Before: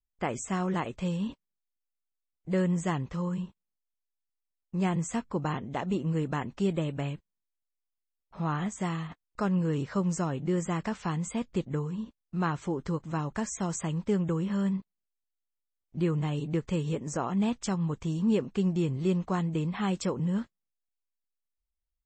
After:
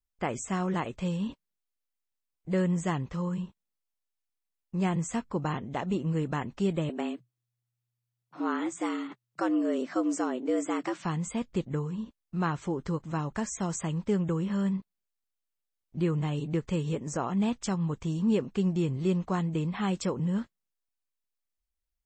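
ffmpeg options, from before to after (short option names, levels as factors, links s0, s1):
-filter_complex "[0:a]asettb=1/sr,asplit=3[s0][s1][s2];[s0]atrim=end=6.894[s3];[s1]atrim=start=6.89:end=11.05,asetpts=PTS-STARTPTS,afade=t=in:d=0.004:c=qsin,afade=t=out:st=4.156:d=0.004:c=qsin,afreqshift=120[s4];[s2]atrim=start=11.046[s5];[s3][s4]acrossfade=d=0.004:c1=hsin:c2=qsin[s6];[s6][s5]acrossfade=d=0.004:c1=qsin:c2=hsin"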